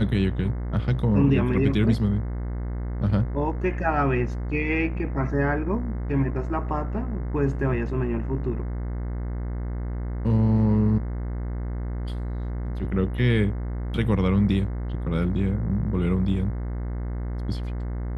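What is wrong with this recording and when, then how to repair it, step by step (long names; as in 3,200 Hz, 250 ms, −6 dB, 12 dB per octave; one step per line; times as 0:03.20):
mains buzz 60 Hz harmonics 36 −29 dBFS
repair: hum removal 60 Hz, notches 36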